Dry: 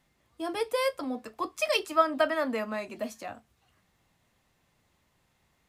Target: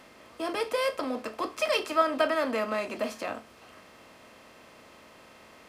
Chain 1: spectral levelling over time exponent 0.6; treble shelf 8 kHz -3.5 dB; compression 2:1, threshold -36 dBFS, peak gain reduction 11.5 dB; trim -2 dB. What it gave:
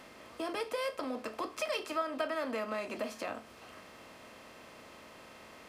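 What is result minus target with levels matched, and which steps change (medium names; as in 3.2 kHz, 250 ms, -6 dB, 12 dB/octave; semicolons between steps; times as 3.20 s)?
compression: peak gain reduction +11.5 dB
remove: compression 2:1, threshold -36 dBFS, peak gain reduction 11.5 dB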